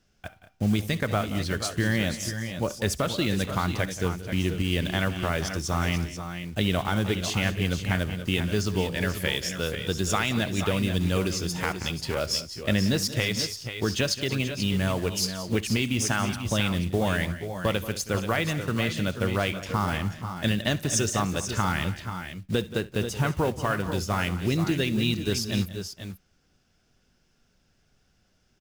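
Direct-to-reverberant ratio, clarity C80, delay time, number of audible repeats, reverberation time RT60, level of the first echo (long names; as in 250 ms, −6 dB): no reverb audible, no reverb audible, 67 ms, 4, no reverb audible, −19.5 dB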